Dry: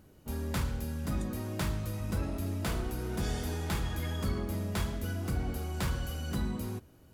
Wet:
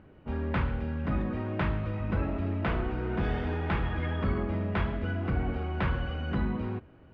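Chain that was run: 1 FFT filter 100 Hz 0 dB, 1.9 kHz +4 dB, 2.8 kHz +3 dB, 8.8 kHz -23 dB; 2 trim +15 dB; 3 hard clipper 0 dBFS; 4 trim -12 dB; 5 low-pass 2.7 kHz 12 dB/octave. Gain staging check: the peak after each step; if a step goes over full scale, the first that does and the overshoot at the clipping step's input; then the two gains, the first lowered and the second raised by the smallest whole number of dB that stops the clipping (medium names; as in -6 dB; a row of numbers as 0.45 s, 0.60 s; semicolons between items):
-20.0 dBFS, -5.0 dBFS, -5.0 dBFS, -17.0 dBFS, -17.0 dBFS; nothing clips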